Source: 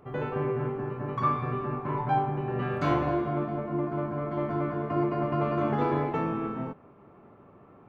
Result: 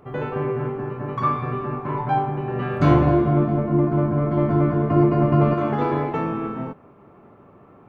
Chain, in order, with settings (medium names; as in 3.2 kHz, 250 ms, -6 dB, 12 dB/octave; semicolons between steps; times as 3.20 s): 2.80–5.54 s: bass shelf 340 Hz +11 dB; trim +4.5 dB